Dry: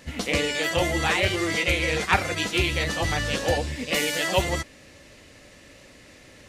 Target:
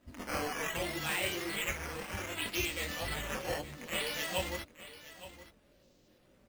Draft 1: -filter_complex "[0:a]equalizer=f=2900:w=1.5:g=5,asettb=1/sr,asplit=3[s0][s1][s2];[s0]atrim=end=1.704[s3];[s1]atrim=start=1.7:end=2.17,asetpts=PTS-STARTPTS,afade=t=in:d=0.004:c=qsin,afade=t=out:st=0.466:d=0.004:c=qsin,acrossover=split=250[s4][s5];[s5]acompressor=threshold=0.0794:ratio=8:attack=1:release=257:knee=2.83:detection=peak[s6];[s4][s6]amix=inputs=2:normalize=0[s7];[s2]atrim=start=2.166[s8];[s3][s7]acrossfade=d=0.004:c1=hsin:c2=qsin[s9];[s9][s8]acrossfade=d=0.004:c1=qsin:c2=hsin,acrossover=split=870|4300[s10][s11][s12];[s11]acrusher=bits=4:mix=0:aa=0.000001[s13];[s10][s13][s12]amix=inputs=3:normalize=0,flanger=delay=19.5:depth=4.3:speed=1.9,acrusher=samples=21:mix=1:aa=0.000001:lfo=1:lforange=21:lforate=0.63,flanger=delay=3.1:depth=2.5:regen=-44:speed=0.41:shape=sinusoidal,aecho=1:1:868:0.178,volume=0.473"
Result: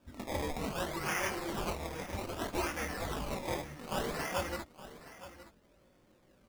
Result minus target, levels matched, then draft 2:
decimation with a swept rate: distortion +8 dB
-filter_complex "[0:a]equalizer=f=2900:w=1.5:g=5,asettb=1/sr,asplit=3[s0][s1][s2];[s0]atrim=end=1.704[s3];[s1]atrim=start=1.7:end=2.17,asetpts=PTS-STARTPTS,afade=t=in:d=0.004:c=qsin,afade=t=out:st=0.466:d=0.004:c=qsin,acrossover=split=250[s4][s5];[s5]acompressor=threshold=0.0794:ratio=8:attack=1:release=257:knee=2.83:detection=peak[s6];[s4][s6]amix=inputs=2:normalize=0[s7];[s2]atrim=start=2.166[s8];[s3][s7]acrossfade=d=0.004:c1=hsin:c2=qsin[s9];[s9][s8]acrossfade=d=0.004:c1=qsin:c2=hsin,acrossover=split=870|4300[s10][s11][s12];[s11]acrusher=bits=4:mix=0:aa=0.000001[s13];[s10][s13][s12]amix=inputs=3:normalize=0,flanger=delay=19.5:depth=4.3:speed=1.9,acrusher=samples=8:mix=1:aa=0.000001:lfo=1:lforange=8:lforate=0.63,flanger=delay=3.1:depth=2.5:regen=-44:speed=0.41:shape=sinusoidal,aecho=1:1:868:0.178,volume=0.473"

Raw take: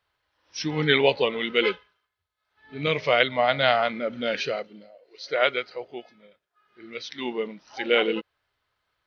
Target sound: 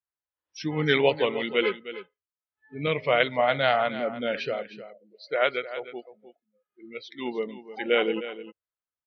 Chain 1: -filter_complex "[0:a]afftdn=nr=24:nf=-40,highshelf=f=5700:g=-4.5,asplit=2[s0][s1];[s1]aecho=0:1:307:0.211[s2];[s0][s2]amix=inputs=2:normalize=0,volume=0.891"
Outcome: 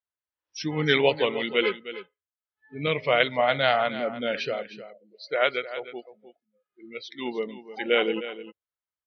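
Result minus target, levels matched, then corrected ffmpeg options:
8 kHz band +4.5 dB
-filter_complex "[0:a]afftdn=nr=24:nf=-40,highshelf=f=5700:g=-15,asplit=2[s0][s1];[s1]aecho=0:1:307:0.211[s2];[s0][s2]amix=inputs=2:normalize=0,volume=0.891"

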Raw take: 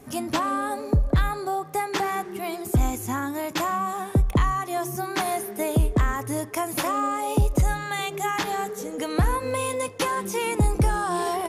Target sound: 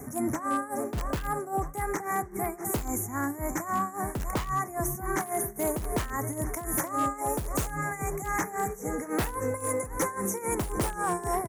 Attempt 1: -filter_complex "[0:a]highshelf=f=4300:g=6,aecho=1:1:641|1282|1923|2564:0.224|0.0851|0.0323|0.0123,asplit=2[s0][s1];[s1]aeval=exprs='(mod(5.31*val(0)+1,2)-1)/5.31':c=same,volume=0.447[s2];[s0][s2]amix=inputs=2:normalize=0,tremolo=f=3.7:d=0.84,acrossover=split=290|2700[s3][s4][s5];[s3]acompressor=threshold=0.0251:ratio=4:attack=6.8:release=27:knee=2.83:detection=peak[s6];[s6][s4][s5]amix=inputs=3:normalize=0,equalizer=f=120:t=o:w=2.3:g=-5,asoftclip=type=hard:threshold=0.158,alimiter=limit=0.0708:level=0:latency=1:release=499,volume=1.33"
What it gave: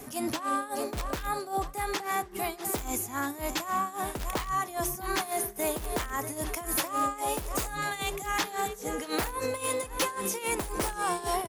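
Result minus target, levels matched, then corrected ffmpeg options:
4 kHz band +10.5 dB; 125 Hz band -6.5 dB
-filter_complex "[0:a]asuperstop=centerf=3600:order=12:qfactor=0.98,highshelf=f=4300:g=6,aecho=1:1:641|1282|1923|2564:0.224|0.0851|0.0323|0.0123,asplit=2[s0][s1];[s1]aeval=exprs='(mod(5.31*val(0)+1,2)-1)/5.31':c=same,volume=0.447[s2];[s0][s2]amix=inputs=2:normalize=0,tremolo=f=3.7:d=0.84,acrossover=split=290|2700[s3][s4][s5];[s3]acompressor=threshold=0.0251:ratio=4:attack=6.8:release=27:knee=2.83:detection=peak[s6];[s6][s4][s5]amix=inputs=3:normalize=0,equalizer=f=120:t=o:w=2.3:g=4,asoftclip=type=hard:threshold=0.158,alimiter=limit=0.0708:level=0:latency=1:release=499,volume=1.33"

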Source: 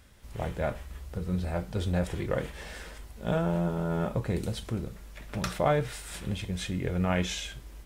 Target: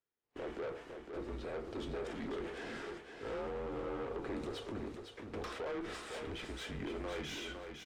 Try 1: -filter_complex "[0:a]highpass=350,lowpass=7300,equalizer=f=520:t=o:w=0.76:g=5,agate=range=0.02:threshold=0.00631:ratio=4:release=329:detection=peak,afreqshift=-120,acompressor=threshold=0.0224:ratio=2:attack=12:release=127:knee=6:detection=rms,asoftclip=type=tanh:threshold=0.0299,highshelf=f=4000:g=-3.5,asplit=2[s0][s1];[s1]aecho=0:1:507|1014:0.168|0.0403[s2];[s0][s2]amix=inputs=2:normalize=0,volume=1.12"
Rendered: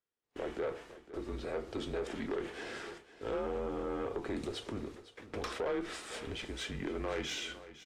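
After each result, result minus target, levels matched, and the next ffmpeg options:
echo-to-direct -9 dB; saturation: distortion -6 dB; 8 kHz band +3.0 dB
-filter_complex "[0:a]highpass=350,lowpass=7300,equalizer=f=520:t=o:w=0.76:g=5,agate=range=0.02:threshold=0.00631:ratio=4:release=329:detection=peak,afreqshift=-120,acompressor=threshold=0.0224:ratio=2:attack=12:release=127:knee=6:detection=rms,asoftclip=type=tanh:threshold=0.0299,highshelf=f=4000:g=-3.5,asplit=2[s0][s1];[s1]aecho=0:1:507|1014|1521:0.473|0.114|0.0273[s2];[s0][s2]amix=inputs=2:normalize=0,volume=1.12"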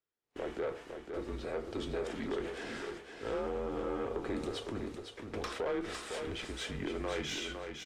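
saturation: distortion -6 dB; 8 kHz band +3.0 dB
-filter_complex "[0:a]highpass=350,lowpass=7300,equalizer=f=520:t=o:w=0.76:g=5,agate=range=0.02:threshold=0.00631:ratio=4:release=329:detection=peak,afreqshift=-120,acompressor=threshold=0.0224:ratio=2:attack=12:release=127:knee=6:detection=rms,asoftclip=type=tanh:threshold=0.0126,highshelf=f=4000:g=-3.5,asplit=2[s0][s1];[s1]aecho=0:1:507|1014|1521:0.473|0.114|0.0273[s2];[s0][s2]amix=inputs=2:normalize=0,volume=1.12"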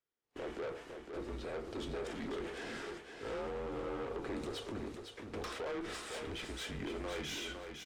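8 kHz band +4.5 dB
-filter_complex "[0:a]highpass=350,lowpass=7300,equalizer=f=520:t=o:w=0.76:g=5,agate=range=0.02:threshold=0.00631:ratio=4:release=329:detection=peak,afreqshift=-120,acompressor=threshold=0.0224:ratio=2:attack=12:release=127:knee=6:detection=rms,asoftclip=type=tanh:threshold=0.0126,highshelf=f=4000:g=-10,asplit=2[s0][s1];[s1]aecho=0:1:507|1014|1521:0.473|0.114|0.0273[s2];[s0][s2]amix=inputs=2:normalize=0,volume=1.12"

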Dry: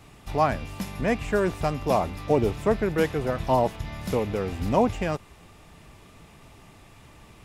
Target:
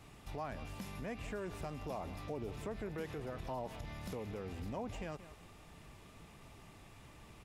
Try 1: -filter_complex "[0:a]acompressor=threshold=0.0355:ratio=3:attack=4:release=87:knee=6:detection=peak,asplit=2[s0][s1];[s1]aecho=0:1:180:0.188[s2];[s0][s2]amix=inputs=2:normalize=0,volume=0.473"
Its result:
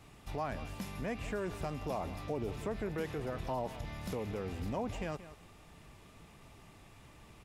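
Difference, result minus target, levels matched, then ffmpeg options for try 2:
compression: peak gain reduction -5 dB
-filter_complex "[0:a]acompressor=threshold=0.015:ratio=3:attack=4:release=87:knee=6:detection=peak,asplit=2[s0][s1];[s1]aecho=0:1:180:0.188[s2];[s0][s2]amix=inputs=2:normalize=0,volume=0.473"

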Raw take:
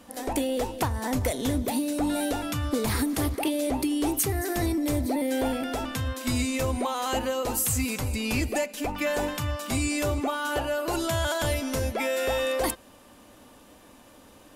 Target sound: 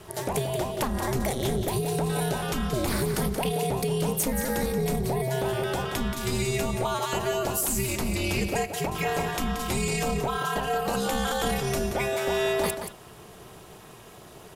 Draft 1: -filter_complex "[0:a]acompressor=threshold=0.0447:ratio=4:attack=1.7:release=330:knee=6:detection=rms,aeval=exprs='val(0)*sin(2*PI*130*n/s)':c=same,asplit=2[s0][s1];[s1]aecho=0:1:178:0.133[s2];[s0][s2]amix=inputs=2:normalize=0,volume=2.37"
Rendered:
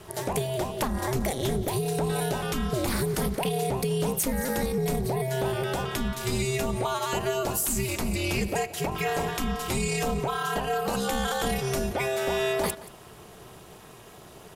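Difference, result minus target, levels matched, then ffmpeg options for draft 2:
echo-to-direct -9.5 dB
-filter_complex "[0:a]acompressor=threshold=0.0447:ratio=4:attack=1.7:release=330:knee=6:detection=rms,aeval=exprs='val(0)*sin(2*PI*130*n/s)':c=same,asplit=2[s0][s1];[s1]aecho=0:1:178:0.398[s2];[s0][s2]amix=inputs=2:normalize=0,volume=2.37"

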